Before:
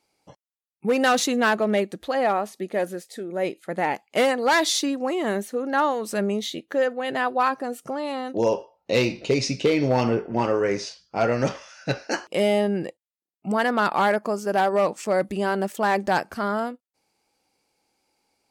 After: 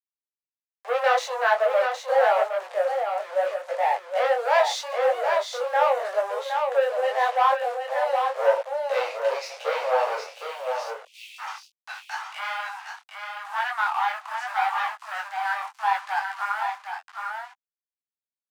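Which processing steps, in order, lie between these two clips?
harmonic and percussive parts rebalanced harmonic +9 dB
centre clipping without the shift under −29 dBFS
de-essing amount 95%
low-pass filter 7,900 Hz 12 dB per octave
leveller curve on the samples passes 2
Butterworth high-pass 520 Hz 72 dB per octave, from 0:10.27 2,500 Hz, from 0:11.38 800 Hz
single-tap delay 765 ms −5 dB
micro pitch shift up and down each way 28 cents
level −2.5 dB

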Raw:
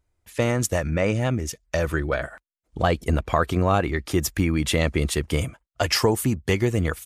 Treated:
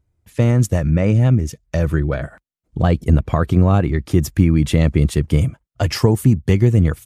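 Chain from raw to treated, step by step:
parametric band 130 Hz +15 dB 2.7 octaves
level −3 dB

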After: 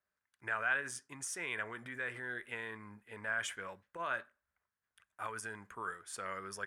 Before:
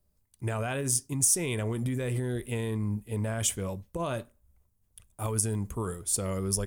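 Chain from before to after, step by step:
resonant band-pass 1,600 Hz, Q 4.1
level +9 dB

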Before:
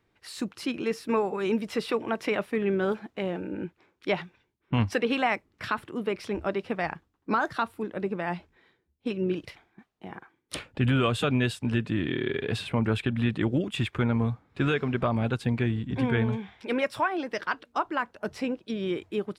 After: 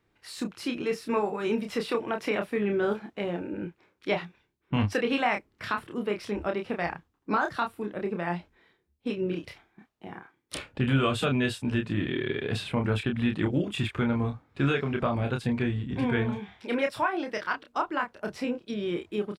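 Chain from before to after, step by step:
double-tracking delay 29 ms −5 dB
level −1.5 dB

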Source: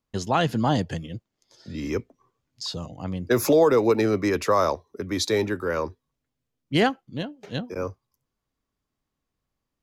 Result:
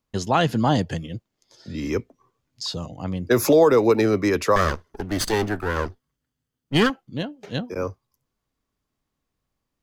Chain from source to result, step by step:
0:04.56–0:06.90: lower of the sound and its delayed copy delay 0.63 ms
level +2.5 dB

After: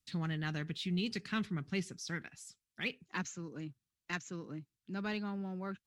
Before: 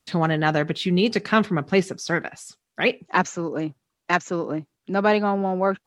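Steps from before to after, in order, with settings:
guitar amp tone stack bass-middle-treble 6-0-2
in parallel at −11 dB: soft clipping −35 dBFS, distortion −15 dB
on the sum: level +2 dB

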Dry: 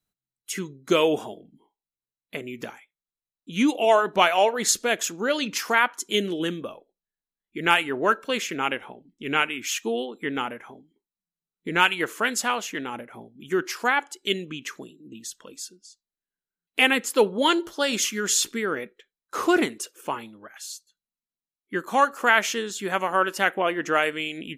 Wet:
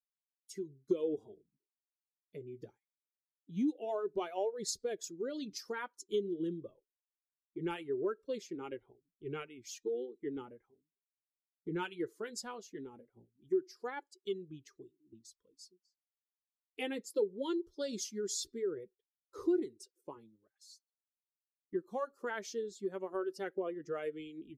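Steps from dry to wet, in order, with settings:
spectral dynamics exaggerated over time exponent 1.5
noise gate −56 dBFS, range −7 dB
drawn EQ curve 110 Hz 0 dB, 240 Hz −4 dB, 390 Hz +8 dB, 670 Hz −10 dB, 2,700 Hz −19 dB, 4,700 Hz −5 dB, 7,700 Hz −11 dB, 13,000 Hz −17 dB
downward compressor 2.5 to 1, threshold −31 dBFS, peak gain reduction 13 dB
flanger 0.21 Hz, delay 1.4 ms, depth 5.3 ms, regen −57%
level +1 dB

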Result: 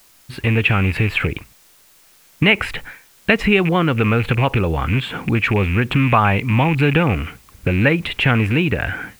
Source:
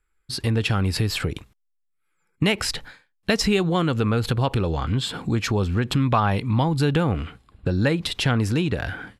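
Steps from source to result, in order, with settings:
loose part that buzzes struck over −22 dBFS, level −24 dBFS
high shelf with overshoot 3,600 Hz −13.5 dB, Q 3
background noise white −56 dBFS
level +4.5 dB

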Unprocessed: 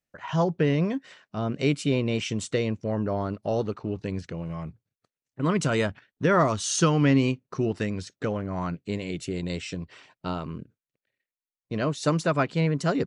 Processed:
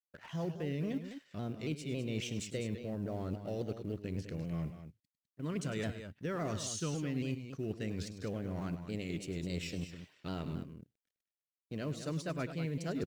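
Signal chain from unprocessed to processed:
mu-law and A-law mismatch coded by A
parametric band 1,000 Hz −9.5 dB 1.2 octaves
reversed playback
downward compressor 6 to 1, threshold −35 dBFS, peak gain reduction 16.5 dB
reversed playback
time-frequency box erased 0:04.79–0:05.18, 300–1,800 Hz
on a send: multi-tap delay 103/204 ms −13.5/−10 dB
on the sum: pitch modulation by a square or saw wave saw down 3.6 Hz, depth 100 cents

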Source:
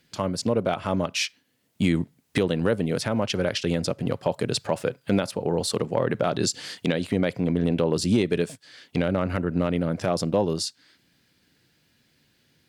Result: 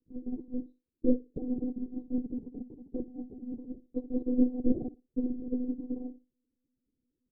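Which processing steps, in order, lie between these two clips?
inverse Chebyshev band-stop filter 720–1,700 Hz, stop band 80 dB
mains-hum notches 50/100/150/200/250 Hz
repeating echo 105 ms, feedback 22%, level −8 dB
wrong playback speed 45 rpm record played at 78 rpm
one-pitch LPC vocoder at 8 kHz 250 Hz
expander for the loud parts 2.5 to 1, over −34 dBFS
level +5 dB

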